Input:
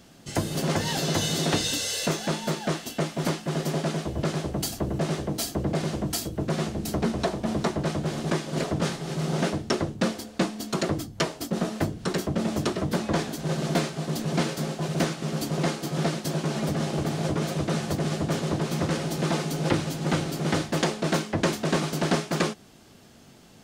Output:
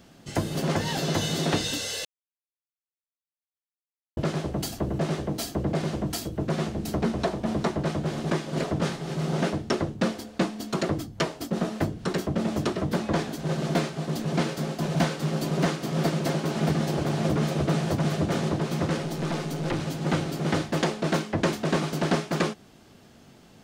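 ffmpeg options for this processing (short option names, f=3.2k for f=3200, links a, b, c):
-filter_complex "[0:a]asettb=1/sr,asplit=3[a][b][c];[a]atrim=end=14.164[d];[b]atrim=start=14.16:end=18.49,asetpts=PTS-STARTPTS,afade=t=in:d=0.004:c=qsin,afade=t=out:st=4.326:d=0.004:c=qsin,aecho=1:1:625:0.708,atrim=end_sample=190953[e];[c]atrim=start=18.486[f];[d][e]acrossfade=d=0.004:c1=hsin:c2=qsin[g];[g][f]acrossfade=d=0.004:c1=qsin:c2=hsin,asettb=1/sr,asplit=3[h][i][j];[h]atrim=end=19.024[k];[i]atrim=start=19.02:end=19.81,asetpts=PTS-STARTPTS,afade=t=in:d=0.004:c=qsin,afade=t=out:st=0.786:d=0.004:c=qsin,aeval=exprs='(tanh(12.6*val(0)+0.35)-tanh(0.35))/12.6':c=same[l];[j]atrim=start=19.806[m];[k][l]acrossfade=d=0.004:c1=hsin:c2=qsin[n];[n][m]acrossfade=d=0.004:c1=qsin:c2=hsin,asplit=3[o][p][q];[o]atrim=end=2.05,asetpts=PTS-STARTPTS,afade=t=out:st=2.046:d=0.004:c=hsin[r];[p]atrim=start=2.05:end=4.17,asetpts=PTS-STARTPTS,volume=0[s];[q]atrim=start=4.17,asetpts=PTS-STARTPTS,afade=t=in:d=0.004:c=hsin[t];[r][s][t]concat=n=3:v=0:a=1,equalizer=f=10k:t=o:w=2.1:g=-5"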